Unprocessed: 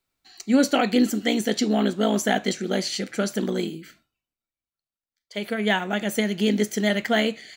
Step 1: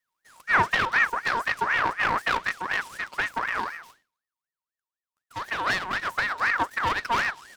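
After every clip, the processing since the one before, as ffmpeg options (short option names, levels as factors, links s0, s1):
-filter_complex "[0:a]acrossover=split=2500[s0][s1];[s1]acompressor=threshold=0.00631:ratio=4:attack=1:release=60[s2];[s0][s2]amix=inputs=2:normalize=0,aeval=exprs='abs(val(0))':c=same,aeval=exprs='val(0)*sin(2*PI*1400*n/s+1400*0.35/4*sin(2*PI*4*n/s))':c=same"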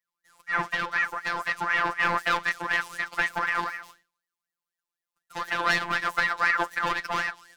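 -af "dynaudnorm=f=560:g=5:m=2.99,afftfilt=real='hypot(re,im)*cos(PI*b)':imag='0':win_size=1024:overlap=0.75,volume=0.708"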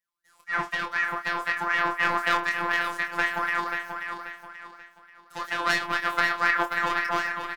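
-filter_complex "[0:a]asplit=2[s0][s1];[s1]adelay=26,volume=0.447[s2];[s0][s2]amix=inputs=2:normalize=0,aeval=exprs='0.562*(cos(1*acos(clip(val(0)/0.562,-1,1)))-cos(1*PI/2))+0.0355*(cos(3*acos(clip(val(0)/0.562,-1,1)))-cos(3*PI/2))':c=same,asplit=2[s3][s4];[s4]aecho=0:1:534|1068|1602|2136:0.447|0.156|0.0547|0.0192[s5];[s3][s5]amix=inputs=2:normalize=0"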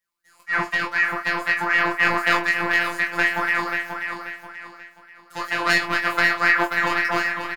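-filter_complex "[0:a]asplit=2[s0][s1];[s1]adelay=17,volume=0.668[s2];[s0][s2]amix=inputs=2:normalize=0,volume=1.58"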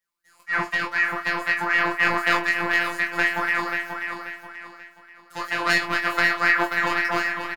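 -af "aecho=1:1:421:0.0841,volume=0.841"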